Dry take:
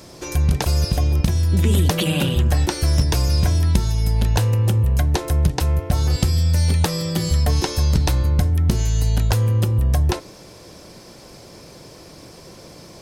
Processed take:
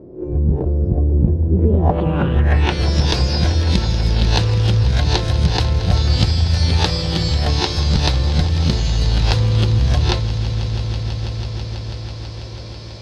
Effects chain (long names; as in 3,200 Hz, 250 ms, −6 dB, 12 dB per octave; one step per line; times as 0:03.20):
peak hold with a rise ahead of every peak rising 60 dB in 0.34 s
low-pass filter sweep 390 Hz → 4,200 Hz, 0:01.52–0:02.92
on a send: echo that builds up and dies away 164 ms, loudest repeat 5, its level −16.5 dB